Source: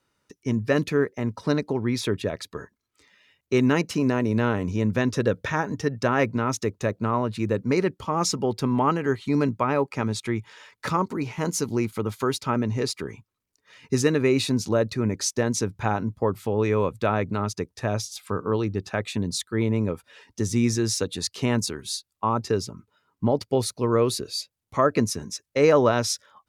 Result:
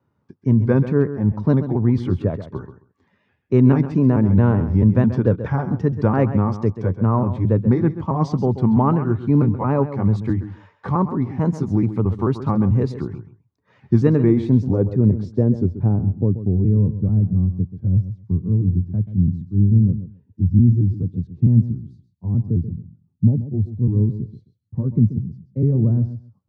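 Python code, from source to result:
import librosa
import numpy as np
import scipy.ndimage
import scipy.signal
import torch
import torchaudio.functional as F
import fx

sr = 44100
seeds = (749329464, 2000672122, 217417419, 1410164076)

y = fx.pitch_trill(x, sr, semitones=-2.0, every_ms=219)
y = scipy.signal.sosfilt(scipy.signal.butter(4, 79.0, 'highpass', fs=sr, output='sos'), y)
y = fx.high_shelf(y, sr, hz=3300.0, db=9.0)
y = fx.echo_feedback(y, sr, ms=133, feedback_pct=16, wet_db=-12.0)
y = fx.filter_sweep_lowpass(y, sr, from_hz=990.0, to_hz=190.0, start_s=14.05, end_s=17.13, q=1.1)
y = fx.bass_treble(y, sr, bass_db=13, treble_db=7)
y = fx.notch(y, sr, hz=1300.0, q=25.0)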